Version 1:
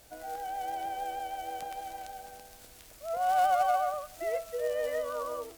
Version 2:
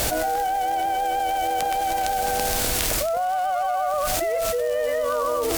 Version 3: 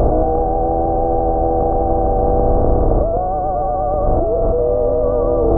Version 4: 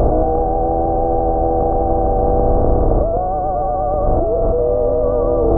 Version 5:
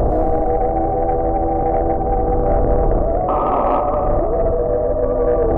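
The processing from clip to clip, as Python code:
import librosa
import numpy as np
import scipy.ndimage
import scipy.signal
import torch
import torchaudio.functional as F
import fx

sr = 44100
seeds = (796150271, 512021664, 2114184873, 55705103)

y1 = fx.env_flatten(x, sr, amount_pct=100)
y2 = fx.bin_compress(y1, sr, power=0.4)
y2 = scipy.ndimage.gaussian_filter1d(y2, 12.0, mode='constant')
y2 = fx.low_shelf(y2, sr, hz=170.0, db=6.0)
y2 = y2 * 10.0 ** (8.0 / 20.0)
y3 = y2
y4 = fx.spec_paint(y3, sr, seeds[0], shape='noise', start_s=3.28, length_s=0.53, low_hz=230.0, high_hz=1300.0, level_db=-17.0)
y4 = fx.rev_freeverb(y4, sr, rt60_s=2.0, hf_ratio=1.0, predelay_ms=80, drr_db=4.5)
y4 = 10.0 ** (-4.5 / 20.0) * np.tanh(y4 / 10.0 ** (-4.5 / 20.0))
y4 = y4 * 10.0 ** (-1.5 / 20.0)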